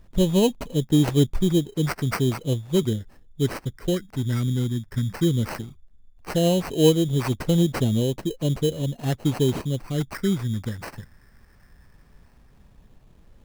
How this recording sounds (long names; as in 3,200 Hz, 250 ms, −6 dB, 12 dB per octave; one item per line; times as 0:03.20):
phaser sweep stages 4, 0.16 Hz, lowest notch 750–1,900 Hz
aliases and images of a low sample rate 3,500 Hz, jitter 0%